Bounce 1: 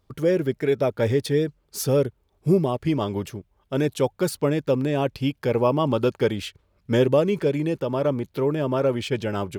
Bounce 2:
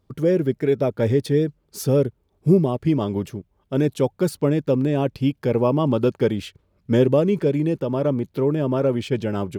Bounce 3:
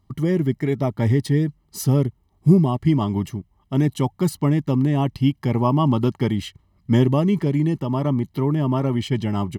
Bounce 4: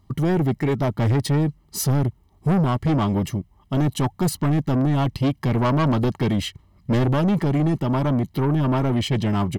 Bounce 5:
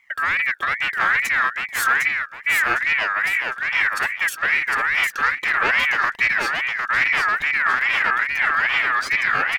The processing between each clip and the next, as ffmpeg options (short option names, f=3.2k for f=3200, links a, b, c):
-af "equalizer=f=200:w=0.45:g=7.5,volume=-3dB"
-af "aecho=1:1:1:0.77"
-af "asoftclip=type=tanh:threshold=-21.5dB,volume=5.5dB"
-af "aecho=1:1:756|1512|2268|3024:0.668|0.187|0.0524|0.0147,aeval=exprs='val(0)*sin(2*PI*1800*n/s+1800*0.2/2.4*sin(2*PI*2.4*n/s))':c=same,volume=1.5dB"